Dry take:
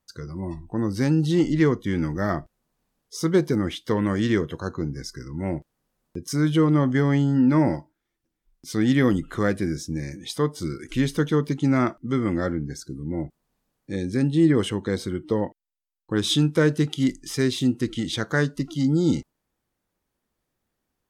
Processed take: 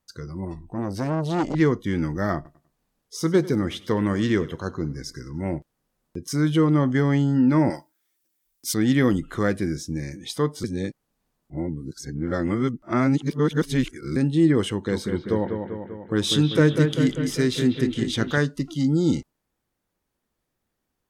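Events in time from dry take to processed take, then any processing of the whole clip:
0.45–1.55 s: transformer saturation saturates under 830 Hz
2.35–5.56 s: feedback delay 98 ms, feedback 32%, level -18.5 dB
7.70–8.74 s: RIAA curve recording
10.64–14.16 s: reverse
14.69–18.38 s: bucket-brigade echo 196 ms, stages 4096, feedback 62%, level -6 dB

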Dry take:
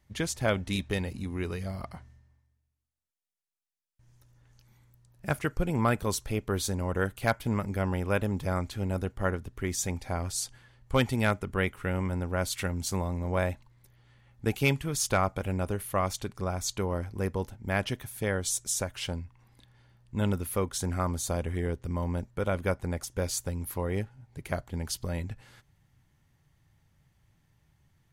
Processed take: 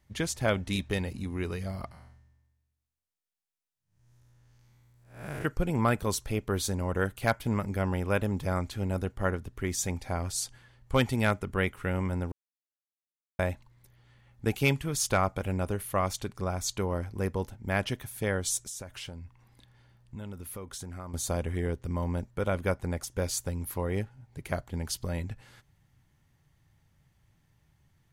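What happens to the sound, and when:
1.91–5.45 s: spectral blur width 214 ms
12.32–13.39 s: mute
18.57–21.14 s: compression 4:1, threshold -38 dBFS

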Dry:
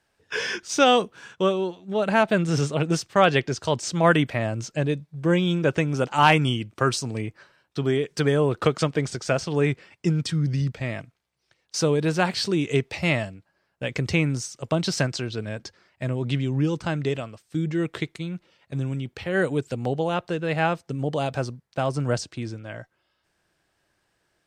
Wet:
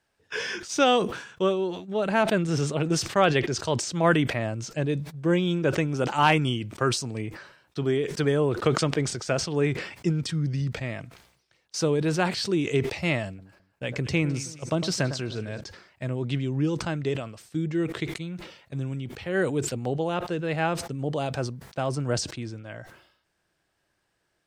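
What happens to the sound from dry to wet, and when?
13.28–15.61 s: echo whose repeats swap between lows and highs 105 ms, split 1.5 kHz, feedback 57%, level -12.5 dB
whole clip: dynamic bell 350 Hz, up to +3 dB, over -32 dBFS, Q 2.4; decay stretcher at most 83 dB/s; trim -3.5 dB

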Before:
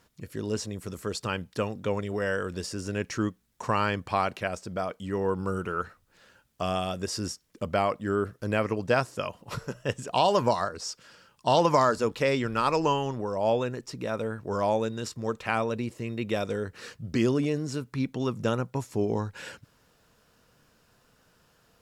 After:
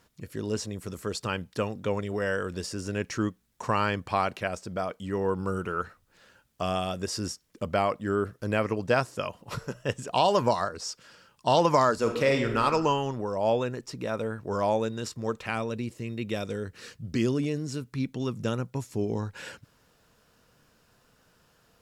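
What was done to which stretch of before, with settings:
11.98–12.63 s: reverb throw, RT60 0.82 s, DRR 3.5 dB
15.46–19.23 s: peaking EQ 870 Hz -5.5 dB 2.2 oct

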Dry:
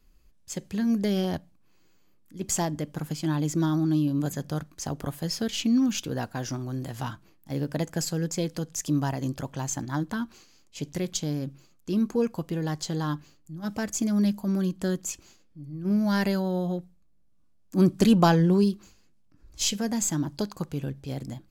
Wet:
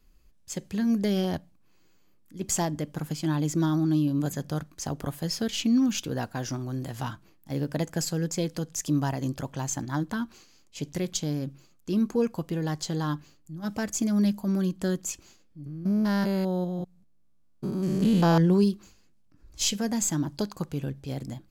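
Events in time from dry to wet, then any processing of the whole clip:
15.66–18.38 s: spectrogram pixelated in time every 200 ms

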